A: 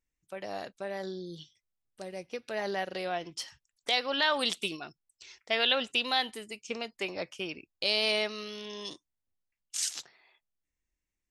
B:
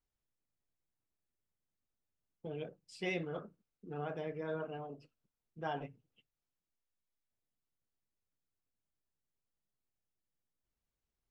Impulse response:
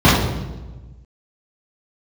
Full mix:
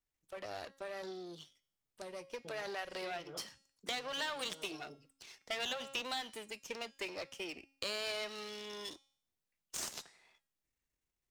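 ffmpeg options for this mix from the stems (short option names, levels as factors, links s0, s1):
-filter_complex "[0:a]aeval=exprs='if(lt(val(0),0),0.251*val(0),val(0))':c=same,highpass=f=120:p=1,volume=1,asplit=2[s0][s1];[1:a]volume=0.668[s2];[s1]apad=whole_len=498345[s3];[s2][s3]sidechaincompress=threshold=0.00891:ratio=8:attack=9.5:release=400[s4];[s0][s4]amix=inputs=2:normalize=0,bandreject=f=272.7:t=h:w=4,bandreject=f=545.4:t=h:w=4,bandreject=f=818.1:t=h:w=4,bandreject=f=1090.8:t=h:w=4,bandreject=f=1363.5:t=h:w=4,bandreject=f=1636.2:t=h:w=4,bandreject=f=1908.9:t=h:w=4,bandreject=f=2181.6:t=h:w=4,bandreject=f=2454.3:t=h:w=4,bandreject=f=2727:t=h:w=4,bandreject=f=2999.7:t=h:w=4,bandreject=f=3272.4:t=h:w=4,bandreject=f=3545.1:t=h:w=4,bandreject=f=3817.8:t=h:w=4,bandreject=f=4090.5:t=h:w=4,bandreject=f=4363.2:t=h:w=4,bandreject=f=4635.9:t=h:w=4,bandreject=f=4908.6:t=h:w=4,bandreject=f=5181.3:t=h:w=4,bandreject=f=5454:t=h:w=4,bandreject=f=5726.7:t=h:w=4,bandreject=f=5999.4:t=h:w=4,bandreject=f=6272.1:t=h:w=4,bandreject=f=6544.8:t=h:w=4,bandreject=f=6817.5:t=h:w=4,bandreject=f=7090.2:t=h:w=4,bandreject=f=7362.9:t=h:w=4,bandreject=f=7635.6:t=h:w=4,bandreject=f=7908.3:t=h:w=4,bandreject=f=8181:t=h:w=4,bandreject=f=8453.7:t=h:w=4,bandreject=f=8726.4:t=h:w=4,bandreject=f=8999.1:t=h:w=4,bandreject=f=9271.8:t=h:w=4,bandreject=f=9544.5:t=h:w=4,bandreject=f=9817.2:t=h:w=4,bandreject=f=10089.9:t=h:w=4,bandreject=f=10362.6:t=h:w=4,bandreject=f=10635.3:t=h:w=4,acrossover=split=230|1800[s5][s6][s7];[s5]acompressor=threshold=0.001:ratio=4[s8];[s6]acompressor=threshold=0.00891:ratio=4[s9];[s7]acompressor=threshold=0.0112:ratio=4[s10];[s8][s9][s10]amix=inputs=3:normalize=0"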